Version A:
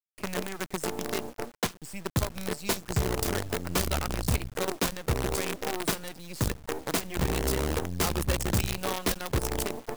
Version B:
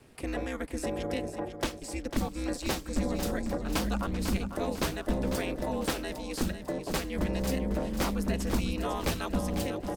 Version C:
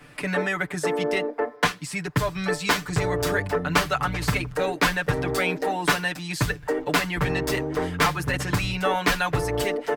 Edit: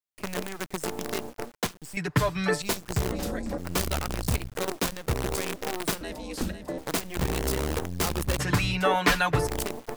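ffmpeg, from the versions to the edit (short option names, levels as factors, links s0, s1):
-filter_complex "[2:a]asplit=2[s0][s1];[1:a]asplit=2[s2][s3];[0:a]asplit=5[s4][s5][s6][s7][s8];[s4]atrim=end=1.972[s9];[s0]atrim=start=1.968:end=2.622[s10];[s5]atrim=start=2.618:end=3.122[s11];[s2]atrim=start=3.118:end=3.582[s12];[s6]atrim=start=3.578:end=6.012[s13];[s3]atrim=start=6.008:end=6.782[s14];[s7]atrim=start=6.778:end=8.392[s15];[s1]atrim=start=8.388:end=9.472[s16];[s8]atrim=start=9.468[s17];[s9][s10]acrossfade=d=0.004:c1=hsin:c2=hsin[s18];[s18][s11]acrossfade=d=0.004:c1=hsin:c2=hsin[s19];[s19][s12]acrossfade=d=0.004:c1=hsin:c2=hsin[s20];[s20][s13]acrossfade=d=0.004:c1=hsin:c2=hsin[s21];[s21][s14]acrossfade=d=0.004:c1=hsin:c2=hsin[s22];[s22][s15]acrossfade=d=0.004:c1=hsin:c2=hsin[s23];[s23][s16]acrossfade=d=0.004:c1=hsin:c2=hsin[s24];[s24][s17]acrossfade=d=0.004:c1=hsin:c2=hsin"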